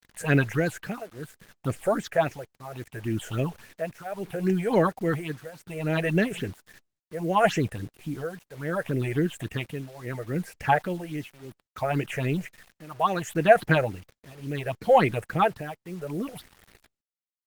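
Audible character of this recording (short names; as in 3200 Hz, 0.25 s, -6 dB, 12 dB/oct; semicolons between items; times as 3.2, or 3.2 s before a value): phasing stages 6, 3.6 Hz, lowest notch 250–1100 Hz; tremolo triangle 0.68 Hz, depth 95%; a quantiser's noise floor 10-bit, dither none; Opus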